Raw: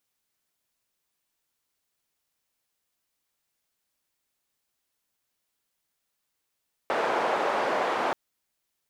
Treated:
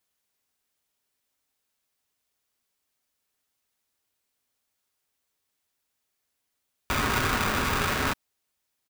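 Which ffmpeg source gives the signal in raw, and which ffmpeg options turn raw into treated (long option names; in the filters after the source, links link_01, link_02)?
-f lavfi -i "anoisesrc=color=white:duration=1.23:sample_rate=44100:seed=1,highpass=frequency=570,lowpass=frequency=750,volume=-3dB"
-af "aecho=1:1:5.9:0.35,aeval=exprs='val(0)*sgn(sin(2*PI*600*n/s))':channel_layout=same"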